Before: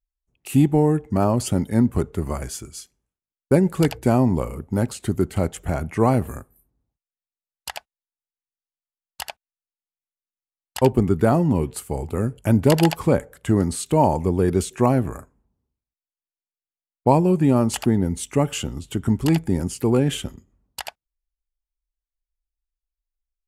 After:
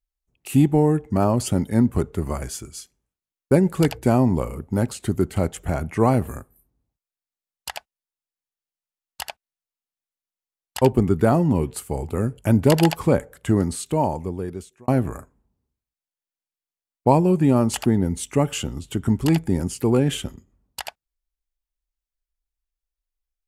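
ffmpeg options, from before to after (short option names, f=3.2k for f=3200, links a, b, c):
-filter_complex "[0:a]asplit=2[a][b];[a]atrim=end=14.88,asetpts=PTS-STARTPTS,afade=t=out:st=13.48:d=1.4[c];[b]atrim=start=14.88,asetpts=PTS-STARTPTS,afade=t=in:d=0.004:c=hsin[d];[c][d]concat=n=2:v=0:a=1"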